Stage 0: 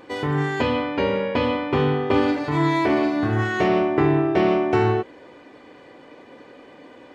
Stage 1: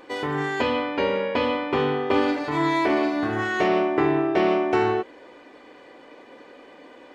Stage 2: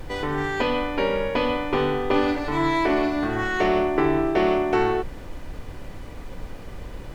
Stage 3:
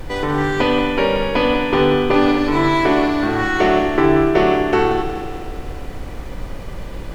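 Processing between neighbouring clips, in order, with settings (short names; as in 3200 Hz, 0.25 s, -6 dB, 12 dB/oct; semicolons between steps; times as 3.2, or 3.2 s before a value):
bell 110 Hz -12 dB 1.6 oct
added noise brown -34 dBFS
multi-head echo 61 ms, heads first and third, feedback 73%, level -11 dB; gain +5.5 dB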